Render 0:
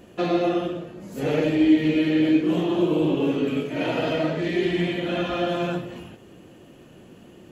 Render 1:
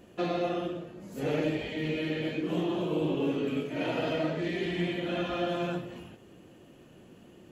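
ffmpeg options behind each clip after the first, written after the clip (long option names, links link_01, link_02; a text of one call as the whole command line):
ffmpeg -i in.wav -af "afftfilt=real='re*lt(hypot(re,im),1)':imag='im*lt(hypot(re,im),1)':win_size=1024:overlap=0.75,volume=-6dB" out.wav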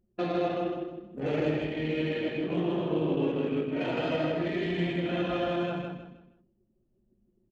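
ffmpeg -i in.wav -af "anlmdn=2.51,aecho=1:1:158|316|474|632:0.631|0.202|0.0646|0.0207" out.wav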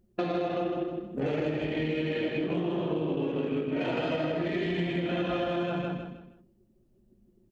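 ffmpeg -i in.wav -af "acompressor=threshold=-33dB:ratio=6,volume=6.5dB" out.wav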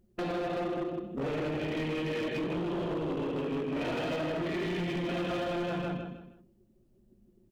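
ffmpeg -i in.wav -af "volume=29.5dB,asoftclip=hard,volume=-29.5dB" out.wav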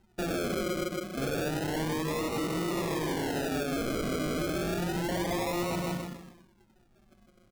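ffmpeg -i in.wav -af "acrusher=samples=38:mix=1:aa=0.000001:lfo=1:lforange=22.8:lforate=0.3,volume=1.5dB" out.wav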